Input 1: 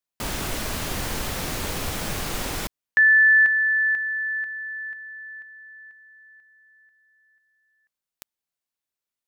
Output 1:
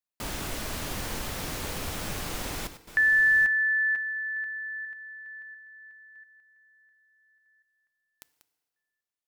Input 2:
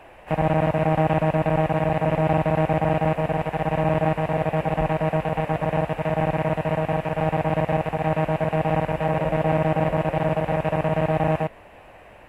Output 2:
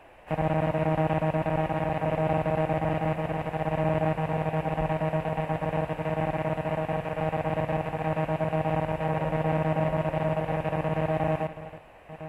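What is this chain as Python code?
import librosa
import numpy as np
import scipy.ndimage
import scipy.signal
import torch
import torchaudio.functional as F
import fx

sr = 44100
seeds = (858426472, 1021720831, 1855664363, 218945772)

y = fx.reverse_delay(x, sr, ms=693, wet_db=-12.5)
y = fx.rev_fdn(y, sr, rt60_s=1.7, lf_ratio=0.75, hf_ratio=0.85, size_ms=20.0, drr_db=16.0)
y = y * 10.0 ** (-5.5 / 20.0)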